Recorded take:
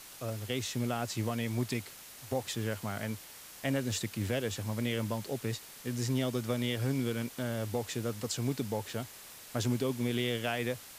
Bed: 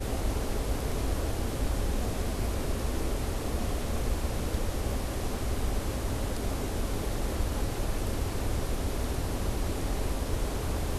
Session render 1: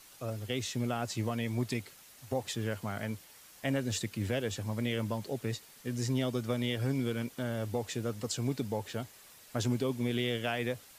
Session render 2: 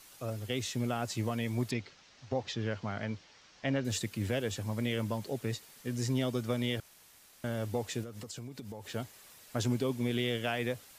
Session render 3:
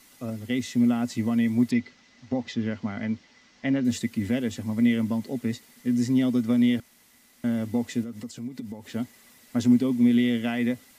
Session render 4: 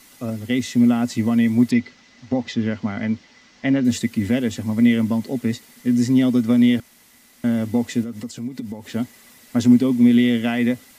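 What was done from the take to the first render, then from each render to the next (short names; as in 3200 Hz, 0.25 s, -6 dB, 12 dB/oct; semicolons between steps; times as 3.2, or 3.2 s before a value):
denoiser 7 dB, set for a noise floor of -50 dBFS
1.71–3.85 steep low-pass 6000 Hz; 6.8–7.44 room tone; 8.03–8.89 compressor 16:1, threshold -39 dBFS
small resonant body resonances 240/2000 Hz, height 16 dB, ringing for 70 ms
gain +6 dB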